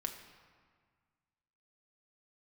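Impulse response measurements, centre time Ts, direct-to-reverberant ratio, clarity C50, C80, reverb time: 27 ms, 3.0 dB, 8.0 dB, 9.0 dB, 1.7 s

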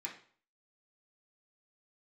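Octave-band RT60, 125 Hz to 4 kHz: 0.50, 0.45, 0.45, 0.50, 0.45, 0.40 seconds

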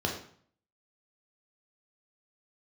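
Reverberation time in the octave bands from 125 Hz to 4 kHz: 0.70, 0.60, 0.55, 0.55, 0.50, 0.45 seconds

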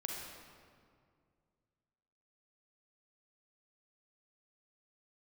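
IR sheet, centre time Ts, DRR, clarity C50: 96 ms, −1.0 dB, 0.0 dB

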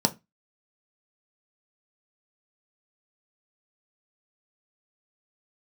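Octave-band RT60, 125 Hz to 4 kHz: 0.30, 0.30, 0.20, 0.20, 0.20, 0.20 seconds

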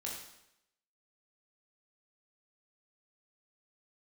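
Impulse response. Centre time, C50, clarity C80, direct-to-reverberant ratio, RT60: 46 ms, 3.0 dB, 6.0 dB, −3.5 dB, 0.85 s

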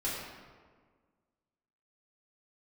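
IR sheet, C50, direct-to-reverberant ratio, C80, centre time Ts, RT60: −0.5 dB, −8.5 dB, 1.5 dB, 89 ms, 1.6 s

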